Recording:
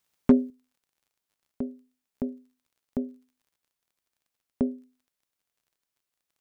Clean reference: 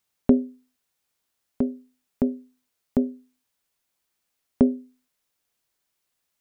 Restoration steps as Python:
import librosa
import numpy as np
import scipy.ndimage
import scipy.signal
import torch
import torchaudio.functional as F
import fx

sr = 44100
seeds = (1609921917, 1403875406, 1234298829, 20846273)

y = fx.fix_declip(x, sr, threshold_db=-9.0)
y = fx.fix_declick_ar(y, sr, threshold=6.5)
y = fx.fix_level(y, sr, at_s=0.5, step_db=8.0)